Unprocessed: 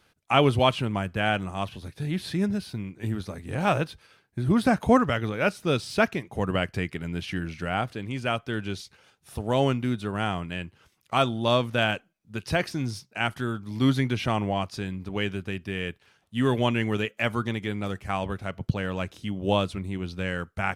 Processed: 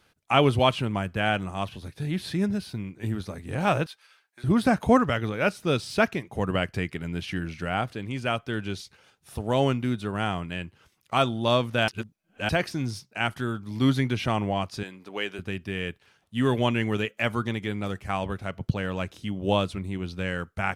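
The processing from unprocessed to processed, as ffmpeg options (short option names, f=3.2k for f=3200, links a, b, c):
-filter_complex "[0:a]asettb=1/sr,asplit=3[a][b][c];[a]atrim=end=3.864[d];[b]atrim=start=3.86:end=4.44,asetpts=PTS-STARTPTS,afade=t=in:d=0.004:c=qsin,afade=t=out:st=0.576:d=0.004:c=qsin,highpass=970[e];[c]atrim=start=4.436[f];[d][e]acrossfade=d=0.004:c1=hsin:c2=qsin[g];[g][f]acrossfade=d=0.004:c1=qsin:c2=hsin,asettb=1/sr,asplit=3[h][i][j];[h]atrim=end=14.834[k];[i]atrim=start=14.83:end=15.39,asetpts=PTS-STARTPTS,afade=t=in:d=0.004:c=qsin,afade=t=out:st=0.556:d=0.004:c=qsin,highpass=380[l];[j]atrim=start=15.386[m];[k][l]acrossfade=d=0.004:c1=hsin:c2=qsin[n];[n][m]acrossfade=d=0.004:c1=qsin:c2=hsin,asplit=3[o][p][q];[o]atrim=end=11.882[r];[p]atrim=start=11.878:end=12.492,asetpts=PTS-STARTPTS,areverse[s];[q]atrim=start=12.488[t];[r][s]acrossfade=d=0.004:c1=hsin:c2=hsin[u];[u][t]acrossfade=d=0.004:c1=hsin:c2=hsin"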